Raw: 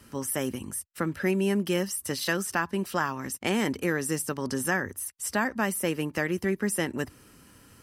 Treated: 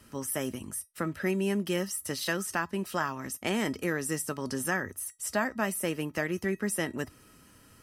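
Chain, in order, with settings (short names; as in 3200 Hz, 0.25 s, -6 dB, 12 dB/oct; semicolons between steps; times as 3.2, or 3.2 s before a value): resonator 640 Hz, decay 0.17 s, harmonics all, mix 70%; gain +6.5 dB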